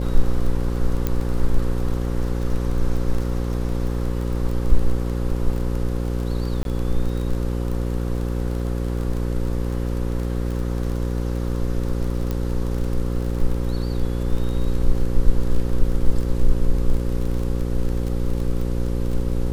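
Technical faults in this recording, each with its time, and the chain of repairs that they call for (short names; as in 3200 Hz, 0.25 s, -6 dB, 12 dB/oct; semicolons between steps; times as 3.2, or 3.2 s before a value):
buzz 60 Hz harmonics 9 -24 dBFS
crackle 26/s -27 dBFS
1.07 pop -10 dBFS
6.63–6.65 gap 22 ms
12.31 pop -13 dBFS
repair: de-click; de-hum 60 Hz, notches 9; interpolate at 6.63, 22 ms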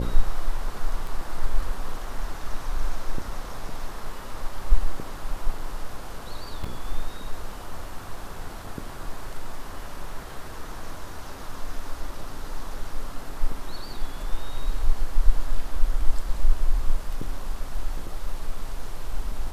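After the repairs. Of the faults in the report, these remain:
1.07 pop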